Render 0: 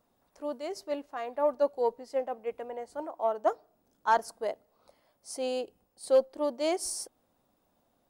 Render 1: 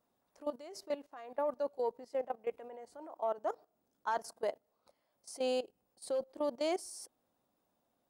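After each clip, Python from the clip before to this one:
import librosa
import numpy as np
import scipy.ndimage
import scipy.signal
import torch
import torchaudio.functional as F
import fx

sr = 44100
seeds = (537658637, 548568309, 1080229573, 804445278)

y = fx.low_shelf(x, sr, hz=62.0, db=-11.5)
y = fx.level_steps(y, sr, step_db=16)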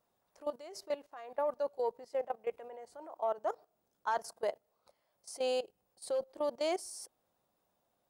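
y = fx.peak_eq(x, sr, hz=260.0, db=-8.0, octaves=0.6)
y = F.gain(torch.from_numpy(y), 1.5).numpy()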